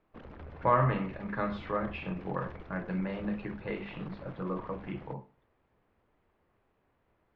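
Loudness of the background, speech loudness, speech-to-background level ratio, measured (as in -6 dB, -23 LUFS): -49.0 LUFS, -34.0 LUFS, 15.0 dB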